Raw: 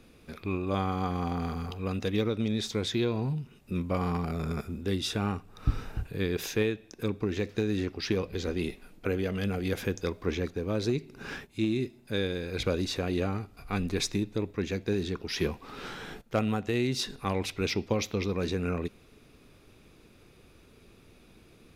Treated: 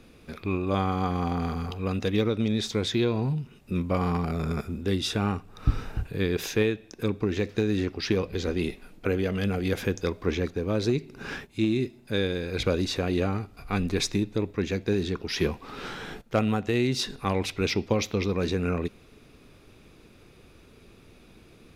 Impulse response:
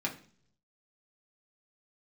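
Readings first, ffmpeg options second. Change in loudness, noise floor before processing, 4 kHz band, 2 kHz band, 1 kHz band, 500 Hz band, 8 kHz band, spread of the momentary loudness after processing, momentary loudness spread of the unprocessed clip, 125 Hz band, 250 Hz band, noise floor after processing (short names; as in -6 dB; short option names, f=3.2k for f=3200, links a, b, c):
+3.5 dB, -57 dBFS, +3.0 dB, +3.5 dB, +3.5 dB, +3.5 dB, +2.0 dB, 6 LU, 6 LU, +3.5 dB, +3.5 dB, -54 dBFS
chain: -af "highshelf=f=8.9k:g=-4,volume=3.5dB"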